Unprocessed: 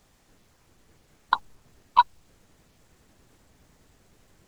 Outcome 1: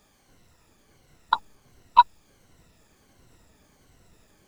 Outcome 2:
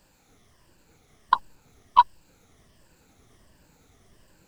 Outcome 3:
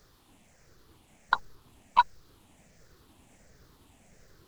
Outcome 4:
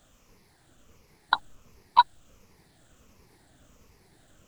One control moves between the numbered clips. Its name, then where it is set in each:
rippled gain that drifts along the octave scale, ripples per octave: 2, 1.3, 0.57, 0.83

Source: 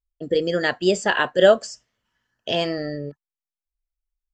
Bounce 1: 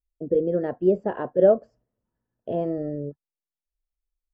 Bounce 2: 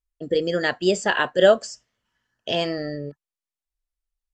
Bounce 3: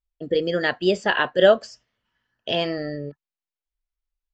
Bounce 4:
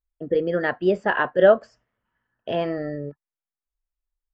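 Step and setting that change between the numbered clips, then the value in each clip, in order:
Chebyshev low-pass filter, frequency: 500, 11,000, 3,800, 1,500 Hertz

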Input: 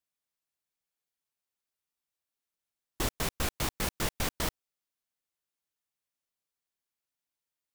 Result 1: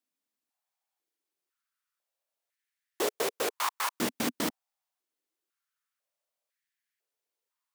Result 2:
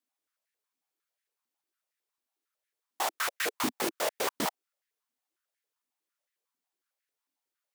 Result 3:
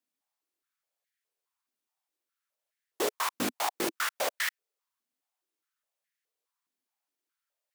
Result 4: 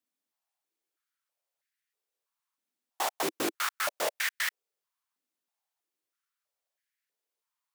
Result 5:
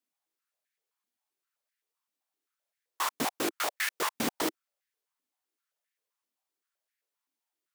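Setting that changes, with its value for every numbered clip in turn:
high-pass on a step sequencer, speed: 2, 11, 4.8, 3.1, 7.7 Hertz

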